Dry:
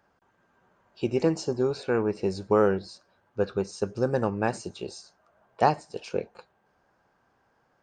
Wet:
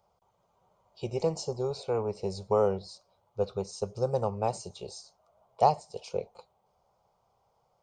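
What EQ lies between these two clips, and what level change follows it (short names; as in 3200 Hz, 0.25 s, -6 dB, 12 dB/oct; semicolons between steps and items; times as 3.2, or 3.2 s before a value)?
fixed phaser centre 690 Hz, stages 4; notch 2700 Hz, Q 13; 0.0 dB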